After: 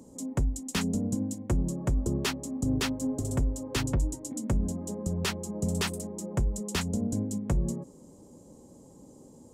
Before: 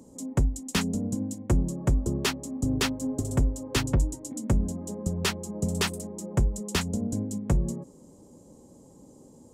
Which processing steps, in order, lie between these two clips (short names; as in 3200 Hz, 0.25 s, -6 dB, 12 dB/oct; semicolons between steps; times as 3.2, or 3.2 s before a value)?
limiter -19 dBFS, peak gain reduction 5 dB